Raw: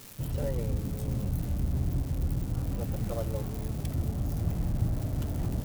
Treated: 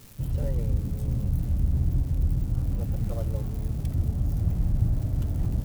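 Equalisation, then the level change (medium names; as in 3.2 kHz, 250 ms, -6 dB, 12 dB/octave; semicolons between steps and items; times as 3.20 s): bass shelf 170 Hz +11.5 dB; -4.0 dB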